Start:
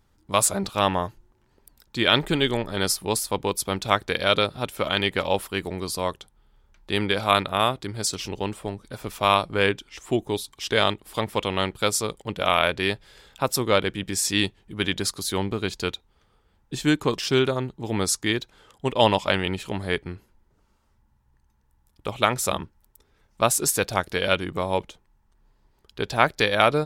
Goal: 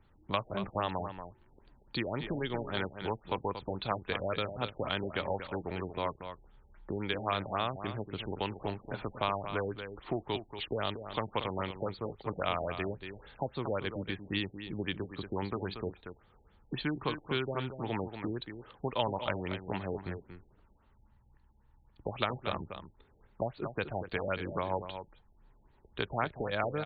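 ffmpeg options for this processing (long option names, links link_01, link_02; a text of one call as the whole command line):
ffmpeg -i in.wav -filter_complex "[0:a]acrossover=split=140|760[link_01][link_02][link_03];[link_01]acompressor=threshold=-45dB:ratio=4[link_04];[link_02]acompressor=threshold=-37dB:ratio=4[link_05];[link_03]acompressor=threshold=-33dB:ratio=4[link_06];[link_04][link_05][link_06]amix=inputs=3:normalize=0,aecho=1:1:233:0.335,afftfilt=real='re*lt(b*sr/1024,840*pow(4700/840,0.5+0.5*sin(2*PI*3.7*pts/sr)))':imag='im*lt(b*sr/1024,840*pow(4700/840,0.5+0.5*sin(2*PI*3.7*pts/sr)))':win_size=1024:overlap=0.75" out.wav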